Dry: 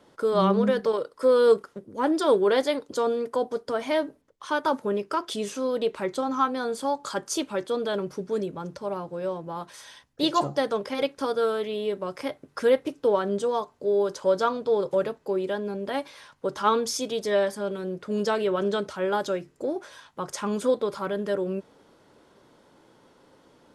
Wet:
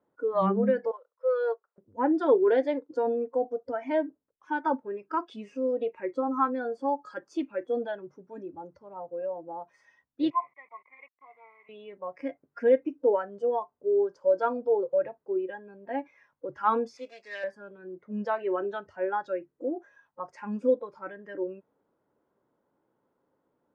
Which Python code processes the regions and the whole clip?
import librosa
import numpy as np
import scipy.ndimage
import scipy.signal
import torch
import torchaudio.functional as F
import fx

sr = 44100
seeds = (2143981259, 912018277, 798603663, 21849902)

y = fx.chain(x, sr, fx.highpass(hz=570.0, slope=24),
    fx.resample_bad(factor=3, down='filtered', up='hold'),
    fx.upward_expand(threshold_db=-39.0, expansion=1.5), at=(0.91, 1.78))
y = fx.chain(y, sr, fx.delta_hold(step_db=-31.5),
    fx.double_bandpass(hz=1500.0, octaves=0.97), at=(10.3, 11.69))
y = fx.chain(y, sr, fx.median_filter(points=15),
    fx.weighting(curve='ITU-R 468'), at=(16.97, 17.44))
y = scipy.signal.sosfilt(scipy.signal.butter(2, 1400.0, 'lowpass', fs=sr, output='sos'), y)
y = fx.noise_reduce_blind(y, sr, reduce_db=17)
y = fx.low_shelf(y, sr, hz=62.0, db=-9.5)